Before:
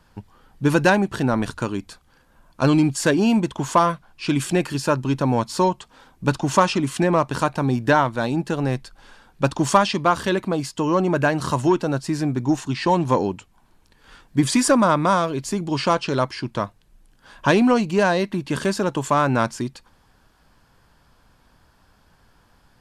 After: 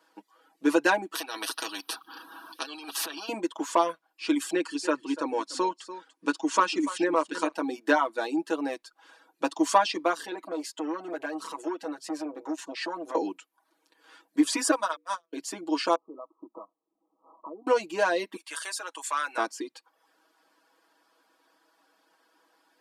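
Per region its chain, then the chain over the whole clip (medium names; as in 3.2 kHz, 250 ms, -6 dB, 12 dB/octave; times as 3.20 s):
1.15–3.29 s: compressor with a negative ratio -22 dBFS, ratio -0.5 + static phaser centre 2.1 kHz, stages 6 + spectrum-flattening compressor 4:1
4.54–7.54 s: steep low-pass 10 kHz + peaking EQ 710 Hz -8 dB 0.38 oct + delay 291 ms -13.5 dB
10.26–13.15 s: compression 5:1, threshold -21 dBFS + transformer saturation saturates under 650 Hz
14.71–15.33 s: gate -16 dBFS, range -42 dB + tilt EQ +3 dB/octave + hum notches 60/120/180/240/300/360/420/480 Hz
15.95–17.67 s: compression 8:1, threshold -32 dBFS + brick-wall FIR low-pass 1.3 kHz
18.36–19.38 s: high-pass 1.2 kHz + peaking EQ 9.3 kHz +8.5 dB 0.55 oct
whole clip: reverb removal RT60 0.51 s; elliptic high-pass 270 Hz, stop band 60 dB; comb 6.2 ms, depth 85%; trim -6.5 dB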